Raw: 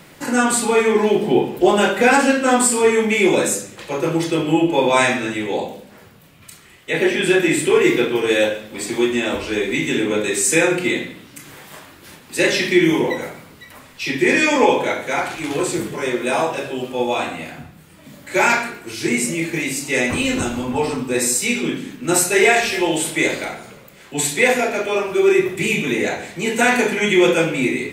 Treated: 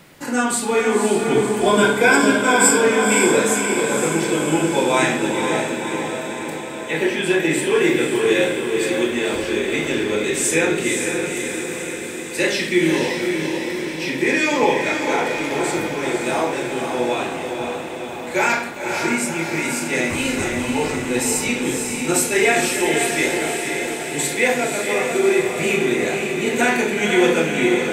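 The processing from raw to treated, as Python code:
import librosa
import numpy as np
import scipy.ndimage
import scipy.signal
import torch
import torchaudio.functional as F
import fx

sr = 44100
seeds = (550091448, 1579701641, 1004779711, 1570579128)

p1 = fx.ripple_eq(x, sr, per_octave=1.7, db=15, at=(1.32, 2.81))
p2 = p1 + fx.echo_diffused(p1, sr, ms=522, feedback_pct=66, wet_db=-4.5, dry=0)
y = p2 * 10.0 ** (-3.0 / 20.0)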